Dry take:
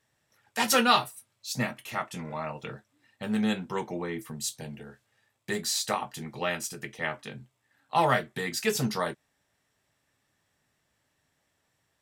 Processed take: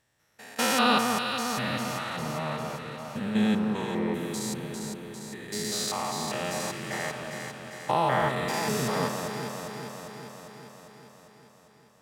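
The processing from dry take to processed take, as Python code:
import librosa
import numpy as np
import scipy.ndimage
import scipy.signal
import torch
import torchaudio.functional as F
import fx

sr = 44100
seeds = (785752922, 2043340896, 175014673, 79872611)

y = fx.spec_steps(x, sr, hold_ms=200)
y = fx.echo_alternate(y, sr, ms=200, hz=1300.0, feedback_pct=79, wet_db=-3.5)
y = F.gain(torch.from_numpy(y), 3.0).numpy()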